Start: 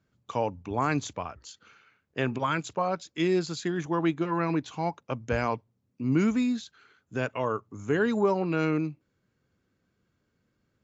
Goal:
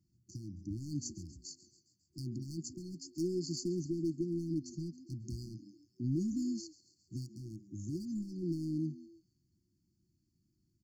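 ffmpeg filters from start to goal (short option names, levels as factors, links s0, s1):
-filter_complex "[0:a]equalizer=f=250:t=o:w=0.33:g=-7,equalizer=f=630:t=o:w=0.33:g=6,equalizer=f=1000:t=o:w=0.33:g=-9,equalizer=f=1600:t=o:w=0.33:g=7,equalizer=f=3150:t=o:w=0.33:g=4,asplit=2[s0][s1];[s1]asplit=5[s2][s3][s4][s5][s6];[s2]adelay=136,afreqshift=88,volume=0.141[s7];[s3]adelay=272,afreqshift=176,volume=0.0804[s8];[s4]adelay=408,afreqshift=264,volume=0.0457[s9];[s5]adelay=544,afreqshift=352,volume=0.0263[s10];[s6]adelay=680,afreqshift=440,volume=0.015[s11];[s7][s8][s9][s10][s11]amix=inputs=5:normalize=0[s12];[s0][s12]amix=inputs=2:normalize=0,acompressor=threshold=0.0398:ratio=4,volume=21.1,asoftclip=hard,volume=0.0473,afftfilt=real='re*(1-between(b*sr/4096,370,4300))':imag='im*(1-between(b*sr/4096,370,4300))':win_size=4096:overlap=0.75,volume=0.891"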